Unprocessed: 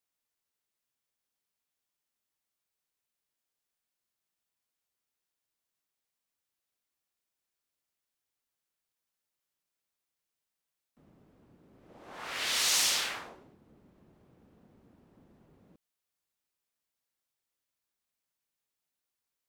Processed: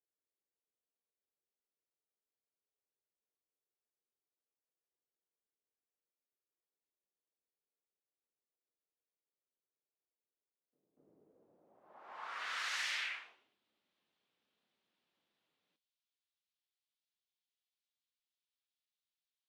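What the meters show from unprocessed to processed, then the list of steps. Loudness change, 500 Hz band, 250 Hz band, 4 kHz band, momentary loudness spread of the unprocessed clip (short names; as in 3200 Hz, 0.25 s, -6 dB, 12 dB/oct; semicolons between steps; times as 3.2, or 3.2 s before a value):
-11.0 dB, -13.5 dB, -19.5 dB, -13.0 dB, 17 LU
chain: flange 0.15 Hz, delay 2.6 ms, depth 5.9 ms, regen -70%; band-pass sweep 430 Hz -> 3500 Hz, 11.22–13.61; pre-echo 0.241 s -15 dB; gain +4 dB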